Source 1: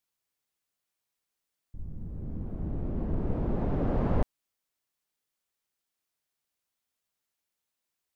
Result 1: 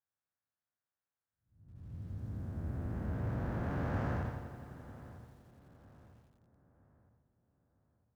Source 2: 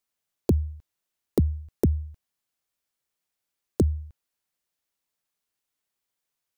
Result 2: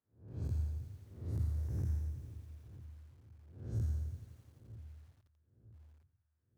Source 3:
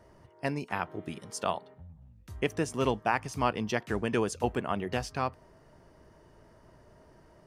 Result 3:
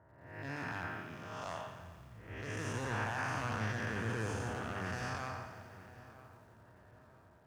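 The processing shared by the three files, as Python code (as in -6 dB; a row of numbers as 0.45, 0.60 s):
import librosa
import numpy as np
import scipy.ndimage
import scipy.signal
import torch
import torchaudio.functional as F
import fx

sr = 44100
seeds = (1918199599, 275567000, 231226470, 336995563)

y = fx.spec_blur(x, sr, span_ms=326.0)
y = scipy.signal.sosfilt(scipy.signal.butter(4, 45.0, 'highpass', fs=sr, output='sos'), y)
y = fx.env_lowpass(y, sr, base_hz=1000.0, full_db=-32.5)
y = fx.low_shelf(y, sr, hz=150.0, db=-5.0)
y = fx.hum_notches(y, sr, base_hz=50, count=6)
y = fx.clip_asym(y, sr, top_db=-33.0, bottom_db=-25.0)
y = fx.graphic_eq_15(y, sr, hz=(100, 400, 1600, 6300), db=(11, -5, 10, 6))
y = fx.echo_filtered(y, sr, ms=954, feedback_pct=40, hz=2300.0, wet_db=-16)
y = fx.echo_crushed(y, sr, ms=86, feedback_pct=80, bits=10, wet_db=-12.0)
y = y * librosa.db_to_amplitude(-3.0)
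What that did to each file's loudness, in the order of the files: -6.5, -12.0, -7.5 LU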